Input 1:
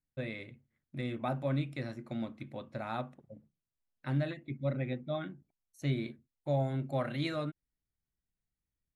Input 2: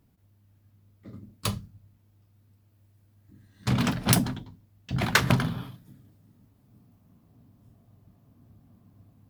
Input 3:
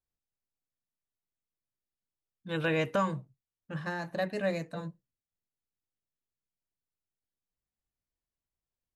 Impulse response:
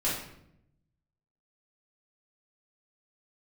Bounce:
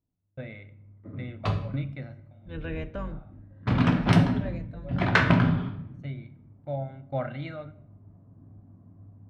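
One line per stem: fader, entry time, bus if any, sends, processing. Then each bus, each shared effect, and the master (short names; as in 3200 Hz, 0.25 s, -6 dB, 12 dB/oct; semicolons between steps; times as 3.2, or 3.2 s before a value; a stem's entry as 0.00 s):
+1.5 dB, 0.20 s, send -21 dB, gate -54 dBFS, range -6 dB; comb 1.4 ms, depth 46%; tremolo saw down 1.3 Hz, depth 90%; auto duck -21 dB, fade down 0.45 s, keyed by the third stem
-1.0 dB, 0.00 s, send -9 dB, low-pass opened by the level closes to 1100 Hz, open at -25.5 dBFS
-6.0 dB, 0.00 s, send -22.5 dB, octaver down 2 oct, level +3 dB; bell 1000 Hz -7 dB 1.3 oct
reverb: on, RT60 0.75 s, pre-delay 3 ms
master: LPF 2500 Hz 12 dB/oct; gate with hold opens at -47 dBFS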